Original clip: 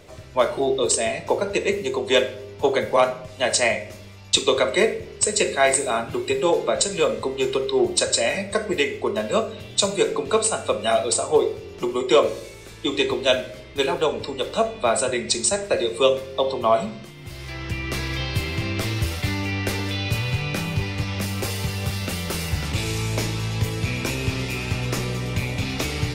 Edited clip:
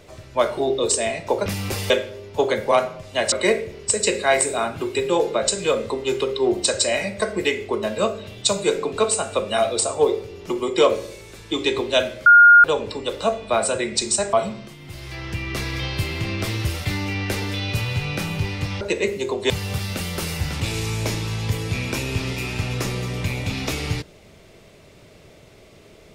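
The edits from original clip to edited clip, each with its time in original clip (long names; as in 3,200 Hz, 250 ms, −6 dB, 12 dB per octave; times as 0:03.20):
0:01.46–0:02.15: swap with 0:21.18–0:21.62
0:03.57–0:04.65: remove
0:13.59–0:13.97: beep over 1,420 Hz −6 dBFS
0:15.66–0:16.70: remove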